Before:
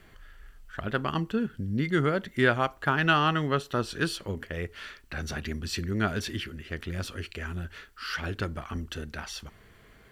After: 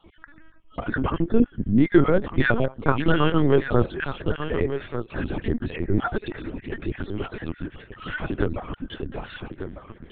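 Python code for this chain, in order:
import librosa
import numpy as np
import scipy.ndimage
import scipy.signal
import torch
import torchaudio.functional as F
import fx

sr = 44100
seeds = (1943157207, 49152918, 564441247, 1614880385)

y = fx.spec_dropout(x, sr, seeds[0], share_pct=35)
y = fx.peak_eq(y, sr, hz=300.0, db=12.5, octaves=3.0)
y = y + 10.0 ** (-10.0 / 20.0) * np.pad(y, (int(1195 * sr / 1000.0), 0))[:len(y)]
y = fx.lpc_vocoder(y, sr, seeds[1], excitation='pitch_kept', order=10)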